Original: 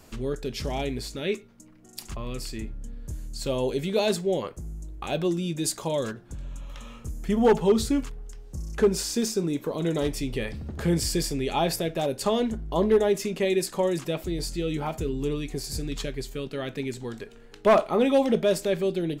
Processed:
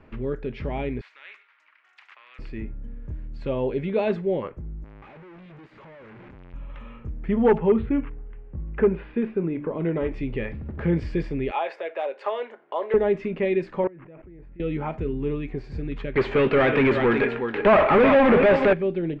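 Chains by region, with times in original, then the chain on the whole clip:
1.01–2.39 HPF 1400 Hz 24 dB/oct + spectral compressor 2:1
4.84–6.54 infinite clipping + low shelf 62 Hz -9.5 dB + level quantiser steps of 23 dB
7.58–10.12 steep low-pass 3100 Hz + de-hum 147 Hz, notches 2
11.51–12.94 HPF 520 Hz 24 dB/oct + three-band squash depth 40%
13.84–14.6 LPF 2300 Hz 24 dB/oct + level quantiser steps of 23 dB + Doppler distortion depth 0.39 ms
16.15–18.73 gate with hold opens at -36 dBFS, closes at -45 dBFS + echo 0.369 s -13.5 dB + overdrive pedal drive 33 dB, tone 4000 Hz, clips at -11 dBFS
whole clip: Chebyshev low-pass 2300 Hz, order 3; notch 710 Hz, Q 12; gain +1.5 dB

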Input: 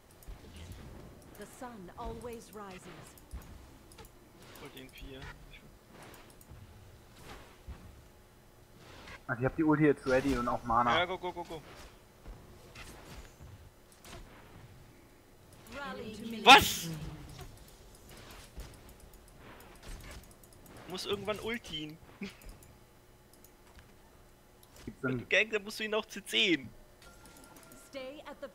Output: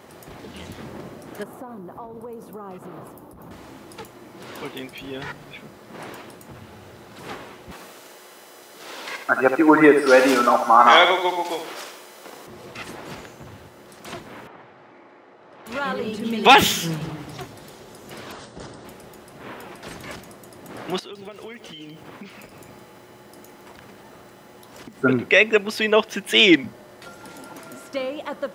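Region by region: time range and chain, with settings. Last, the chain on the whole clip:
1.43–3.51 band shelf 3800 Hz -13 dB 2.7 oct + compressor 10:1, threshold -48 dBFS
7.71–12.47 HPF 350 Hz + high shelf 3700 Hz +9.5 dB + feedback echo 74 ms, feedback 42%, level -8 dB
14.47–15.66 band-pass 1000 Hz, Q 0.62 + air absorption 67 m
18.32–18.85 brick-wall FIR low-pass 9400 Hz + bell 2400 Hz -11 dB 0.44 oct
20.99–25.03 compressor 12:1, threshold -50 dBFS + lo-fi delay 0.162 s, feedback 35%, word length 11-bit, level -10.5 dB
whole clip: HPF 170 Hz 12 dB/oct; bell 12000 Hz -7.5 dB 2.5 oct; maximiser +17.5 dB; gain -1 dB

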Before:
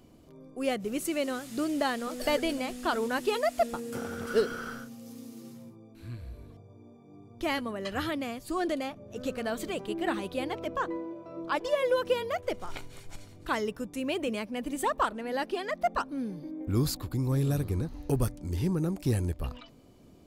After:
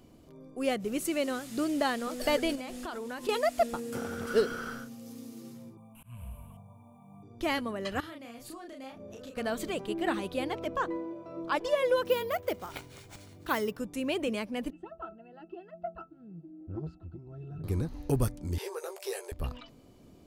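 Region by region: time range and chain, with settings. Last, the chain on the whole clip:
2.55–3.29 de-hum 173.9 Hz, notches 6 + compressor, threshold -35 dBFS
5.77–7.23 EQ curve 130 Hz 0 dB, 200 Hz +7 dB, 350 Hz -26 dB, 530 Hz -3 dB, 1000 Hz +11 dB, 1800 Hz -12 dB, 2900 Hz +11 dB, 4300 Hz -23 dB, 9500 Hz +14 dB, 15000 Hz +11 dB + auto swell 0.2 s
8–9.37 low shelf 130 Hz -8 dB + compressor 10:1, threshold -43 dBFS + doubler 34 ms -3 dB
12.05–13.78 HPF 63 Hz + careless resampling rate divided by 3×, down none, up hold
14.7–17.64 air absorption 63 m + octave resonator E, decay 0.13 s + core saturation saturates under 280 Hz
18.58–19.32 brick-wall FIR high-pass 370 Hz + doubler 15 ms -6 dB + three-band squash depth 40%
whole clip: dry

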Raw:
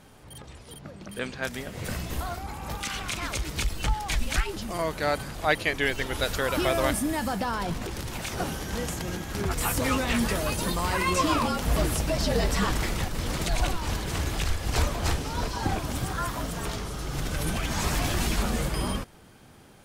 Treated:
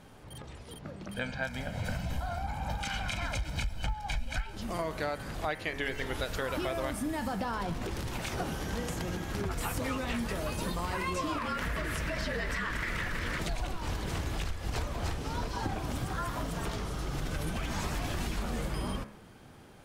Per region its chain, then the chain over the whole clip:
1.14–4.56 high shelf 8600 Hz -8 dB + comb 1.3 ms, depth 75% + companded quantiser 8-bit
11.38–13.4 bell 1800 Hz +14.5 dB 1.1 oct + notch 790 Hz, Q 6 + compressor 4:1, threshold -23 dBFS
whole clip: high shelf 4000 Hz -6.5 dB; de-hum 70.17 Hz, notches 38; compressor, threshold -30 dBFS

